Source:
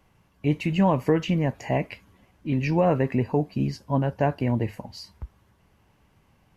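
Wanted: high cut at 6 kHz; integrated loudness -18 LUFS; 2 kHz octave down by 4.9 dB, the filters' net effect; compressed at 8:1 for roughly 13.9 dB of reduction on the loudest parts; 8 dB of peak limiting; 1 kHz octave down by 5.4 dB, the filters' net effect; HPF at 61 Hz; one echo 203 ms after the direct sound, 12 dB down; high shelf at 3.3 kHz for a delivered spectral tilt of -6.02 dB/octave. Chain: high-pass 61 Hz; low-pass 6 kHz; peaking EQ 1 kHz -7 dB; peaking EQ 2 kHz -8 dB; treble shelf 3.3 kHz +8.5 dB; compression 8:1, threshold -32 dBFS; peak limiter -28.5 dBFS; delay 203 ms -12 dB; trim +22 dB

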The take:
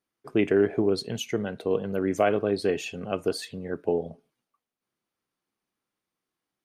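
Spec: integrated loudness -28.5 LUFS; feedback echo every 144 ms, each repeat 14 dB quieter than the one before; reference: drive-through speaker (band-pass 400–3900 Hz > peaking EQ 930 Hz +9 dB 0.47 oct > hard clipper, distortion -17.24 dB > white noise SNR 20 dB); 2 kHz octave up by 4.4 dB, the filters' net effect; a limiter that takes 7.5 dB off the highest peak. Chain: peaking EQ 2 kHz +5.5 dB; peak limiter -16 dBFS; band-pass 400–3900 Hz; peaking EQ 930 Hz +9 dB 0.47 oct; feedback delay 144 ms, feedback 20%, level -14 dB; hard clipper -22.5 dBFS; white noise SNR 20 dB; trim +3.5 dB

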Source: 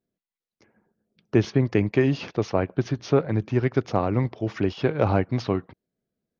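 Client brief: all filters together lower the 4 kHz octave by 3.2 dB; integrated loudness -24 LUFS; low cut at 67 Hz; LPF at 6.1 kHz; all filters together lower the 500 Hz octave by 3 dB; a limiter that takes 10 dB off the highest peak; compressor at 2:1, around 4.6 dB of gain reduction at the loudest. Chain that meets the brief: high-pass 67 Hz; low-pass 6.1 kHz; peaking EQ 500 Hz -4 dB; peaking EQ 4 kHz -3.5 dB; compression 2:1, threshold -24 dBFS; trim +10 dB; peak limiter -12 dBFS

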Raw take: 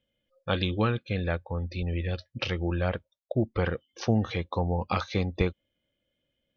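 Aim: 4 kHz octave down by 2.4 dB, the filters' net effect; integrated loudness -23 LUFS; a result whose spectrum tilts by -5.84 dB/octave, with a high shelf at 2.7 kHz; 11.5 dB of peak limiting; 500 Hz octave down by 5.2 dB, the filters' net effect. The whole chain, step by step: peaking EQ 500 Hz -6.5 dB; treble shelf 2.7 kHz +5 dB; peaking EQ 4 kHz -7 dB; trim +11.5 dB; peak limiter -12.5 dBFS

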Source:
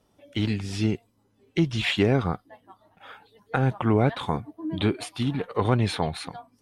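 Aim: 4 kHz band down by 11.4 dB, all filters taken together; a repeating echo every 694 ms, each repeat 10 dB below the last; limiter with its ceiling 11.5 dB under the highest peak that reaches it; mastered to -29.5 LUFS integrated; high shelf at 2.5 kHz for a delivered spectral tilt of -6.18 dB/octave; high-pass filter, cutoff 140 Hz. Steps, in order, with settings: high-pass 140 Hz; treble shelf 2.5 kHz -8 dB; peaking EQ 4 kHz -8.5 dB; peak limiter -20.5 dBFS; feedback delay 694 ms, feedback 32%, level -10 dB; trim +4 dB

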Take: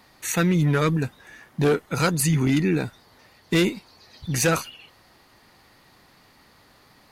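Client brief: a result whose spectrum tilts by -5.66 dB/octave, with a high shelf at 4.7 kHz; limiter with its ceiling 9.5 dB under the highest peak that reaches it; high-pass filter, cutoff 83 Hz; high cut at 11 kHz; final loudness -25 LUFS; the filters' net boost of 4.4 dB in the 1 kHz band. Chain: high-pass 83 Hz; low-pass 11 kHz; peaking EQ 1 kHz +7 dB; treble shelf 4.7 kHz -8 dB; trim +2.5 dB; peak limiter -15 dBFS

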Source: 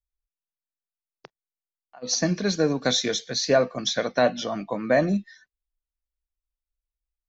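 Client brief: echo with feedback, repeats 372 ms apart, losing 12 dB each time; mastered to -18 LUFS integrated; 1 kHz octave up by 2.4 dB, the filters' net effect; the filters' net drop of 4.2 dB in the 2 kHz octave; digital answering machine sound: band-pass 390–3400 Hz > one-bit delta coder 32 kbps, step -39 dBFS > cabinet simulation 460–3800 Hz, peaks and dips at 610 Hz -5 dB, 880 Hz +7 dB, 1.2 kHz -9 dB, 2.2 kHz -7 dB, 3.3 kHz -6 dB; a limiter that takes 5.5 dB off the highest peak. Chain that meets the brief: peaking EQ 1 kHz +6 dB; peaking EQ 2 kHz -4 dB; peak limiter -12 dBFS; band-pass 390–3400 Hz; feedback delay 372 ms, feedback 25%, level -12 dB; one-bit delta coder 32 kbps, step -39 dBFS; cabinet simulation 460–3800 Hz, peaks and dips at 610 Hz -5 dB, 880 Hz +7 dB, 1.2 kHz -9 dB, 2.2 kHz -7 dB, 3.3 kHz -6 dB; trim +15.5 dB

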